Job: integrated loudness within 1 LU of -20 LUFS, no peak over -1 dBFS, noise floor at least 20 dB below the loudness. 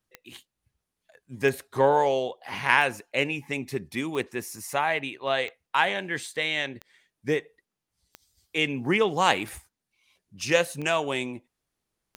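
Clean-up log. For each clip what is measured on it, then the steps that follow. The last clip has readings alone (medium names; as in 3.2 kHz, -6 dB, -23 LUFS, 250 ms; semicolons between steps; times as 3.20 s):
clicks found 10; loudness -26.5 LUFS; peak level -4.0 dBFS; loudness target -20.0 LUFS
-> de-click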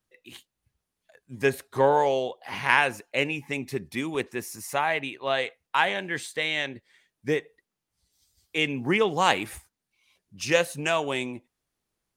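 clicks found 0; loudness -26.5 LUFS; peak level -4.0 dBFS; loudness target -20.0 LUFS
-> trim +6.5 dB; peak limiter -1 dBFS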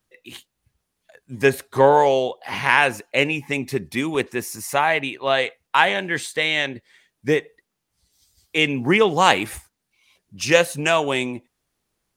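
loudness -20.0 LUFS; peak level -1.0 dBFS; noise floor -78 dBFS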